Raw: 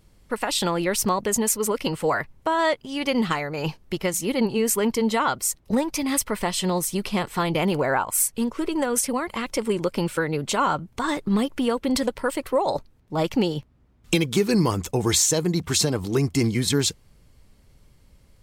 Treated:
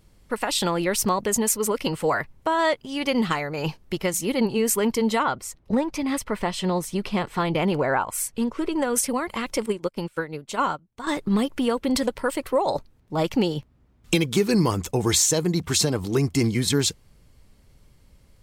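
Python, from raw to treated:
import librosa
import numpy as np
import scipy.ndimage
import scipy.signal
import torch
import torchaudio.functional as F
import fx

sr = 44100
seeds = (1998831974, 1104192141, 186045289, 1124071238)

y = fx.lowpass(x, sr, hz=fx.line((5.22, 2100.0), (8.85, 5500.0)), slope=6, at=(5.22, 8.85), fade=0.02)
y = fx.upward_expand(y, sr, threshold_db=-34.0, expansion=2.5, at=(9.66, 11.07))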